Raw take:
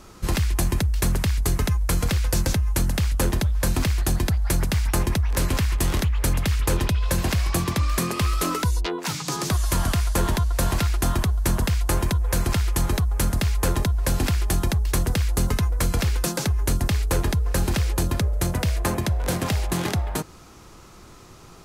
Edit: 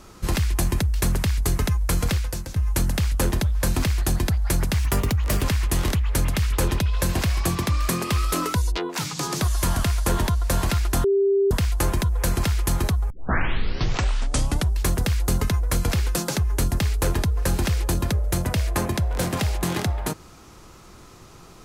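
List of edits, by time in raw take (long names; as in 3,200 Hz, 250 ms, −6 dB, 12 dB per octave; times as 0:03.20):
0:02.14–0:02.56: fade out quadratic, to −12.5 dB
0:04.79–0:05.52: play speed 114%
0:11.13–0:11.60: beep over 395 Hz −16 dBFS
0:13.19: tape start 1.73 s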